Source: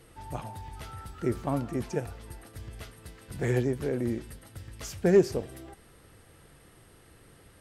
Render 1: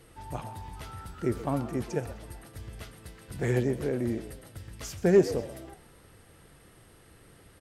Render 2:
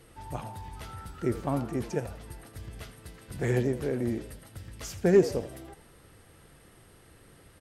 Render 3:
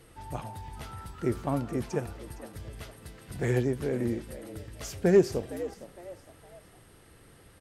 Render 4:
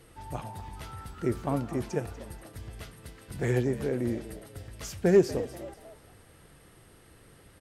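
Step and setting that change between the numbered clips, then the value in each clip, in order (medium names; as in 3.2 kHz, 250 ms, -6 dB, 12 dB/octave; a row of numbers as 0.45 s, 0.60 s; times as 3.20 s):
frequency-shifting echo, time: 128 ms, 81 ms, 461 ms, 241 ms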